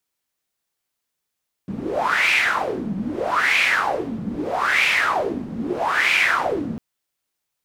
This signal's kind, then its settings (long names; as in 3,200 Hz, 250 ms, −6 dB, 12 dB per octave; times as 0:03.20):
wind from filtered noise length 5.10 s, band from 200 Hz, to 2,400 Hz, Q 5.8, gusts 4, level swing 10 dB